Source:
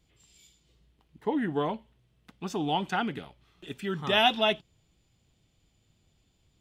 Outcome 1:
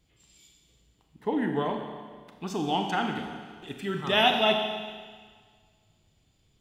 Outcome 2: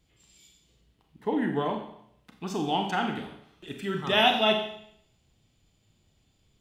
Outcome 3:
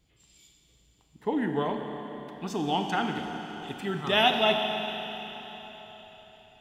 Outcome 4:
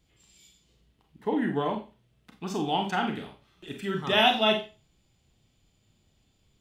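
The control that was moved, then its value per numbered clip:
four-comb reverb, RT60: 1.7, 0.7, 4.3, 0.32 seconds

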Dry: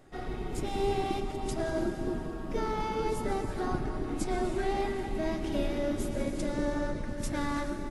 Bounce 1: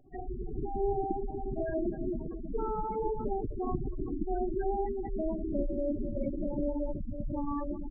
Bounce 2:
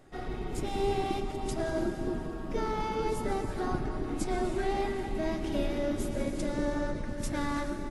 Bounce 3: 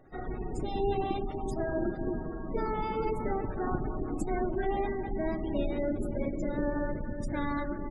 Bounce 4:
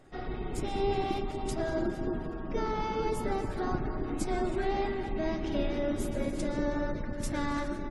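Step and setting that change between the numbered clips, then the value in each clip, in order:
gate on every frequency bin, under each frame's peak: −10, −55, −25, −40 decibels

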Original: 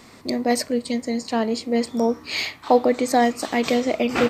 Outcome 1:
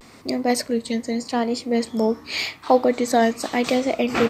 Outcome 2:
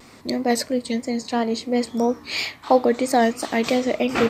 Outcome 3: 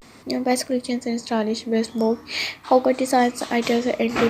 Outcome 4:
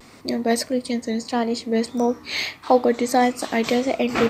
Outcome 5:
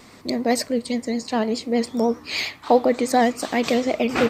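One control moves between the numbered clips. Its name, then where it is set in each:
pitch vibrato, speed: 0.86, 3, 0.43, 1.6, 9.8 Hertz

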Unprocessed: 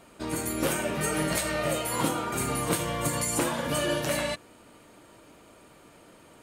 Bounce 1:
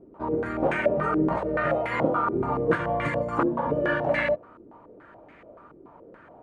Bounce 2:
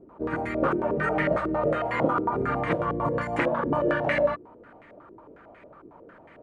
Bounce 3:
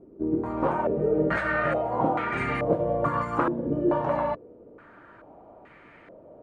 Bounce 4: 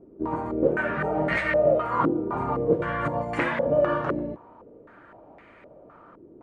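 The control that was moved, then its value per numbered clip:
low-pass on a step sequencer, speed: 7, 11, 2.3, 3.9 Hertz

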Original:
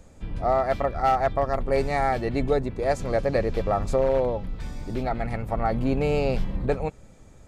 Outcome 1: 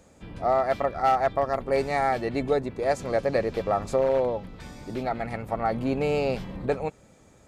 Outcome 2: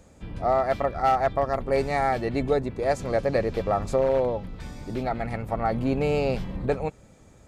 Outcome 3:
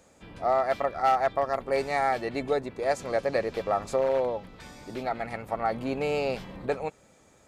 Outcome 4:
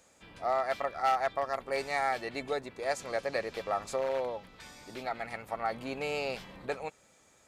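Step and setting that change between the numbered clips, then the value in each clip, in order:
high-pass filter, corner frequency: 190, 71, 500, 1,500 Hertz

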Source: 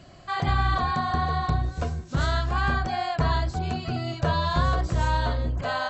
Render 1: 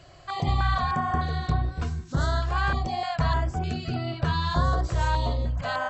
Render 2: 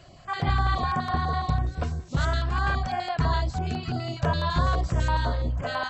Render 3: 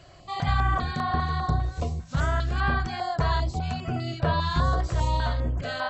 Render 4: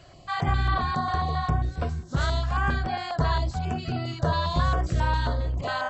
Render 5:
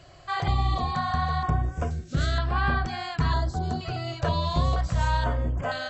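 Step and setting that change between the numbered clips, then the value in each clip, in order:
notch on a step sequencer, speed: 3.3, 12, 5, 7.4, 2.1 Hertz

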